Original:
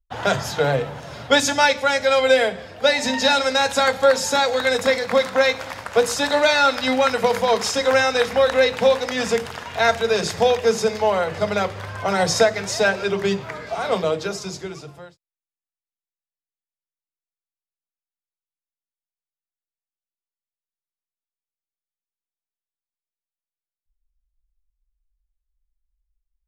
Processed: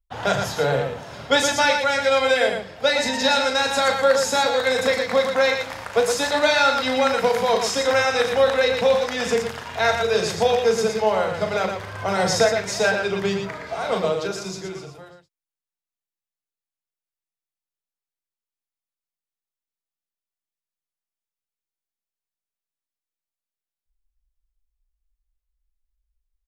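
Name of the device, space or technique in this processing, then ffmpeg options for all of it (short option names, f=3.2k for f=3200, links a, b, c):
slapback doubling: -filter_complex "[0:a]asplit=3[a][b][c];[b]adelay=37,volume=-7.5dB[d];[c]adelay=116,volume=-6dB[e];[a][d][e]amix=inputs=3:normalize=0,volume=-2.5dB"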